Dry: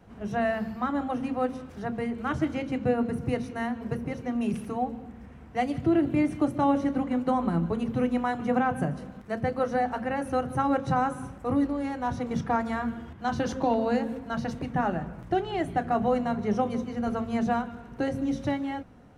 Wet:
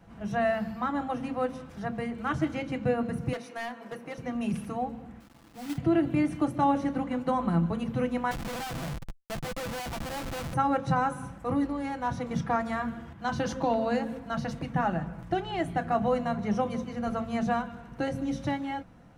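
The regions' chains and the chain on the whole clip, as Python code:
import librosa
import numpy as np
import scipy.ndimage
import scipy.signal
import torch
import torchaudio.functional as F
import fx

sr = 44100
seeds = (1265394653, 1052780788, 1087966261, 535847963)

y = fx.chain(x, sr, fx.highpass(hz=380.0, slope=12),
    fx.clip_hard(threshold_db=-30.0), at=(3.33, 4.18))
y = fx.chain(y, sr, fx.formant_cascade(vowel='u'),
    fx.quant_companded(bits=4), at=(5.2, 5.78))
y = fx.chain(y, sr, fx.peak_eq(hz=220.0, db=-6.5, octaves=1.0),
    fx.schmitt(flips_db=-35.0),
    fx.tube_stage(drive_db=31.0, bias=0.5), at=(8.31, 10.54))
y = fx.peak_eq(y, sr, hz=400.0, db=-5.5, octaves=0.8)
y = y + 0.32 * np.pad(y, (int(6.0 * sr / 1000.0), 0))[:len(y)]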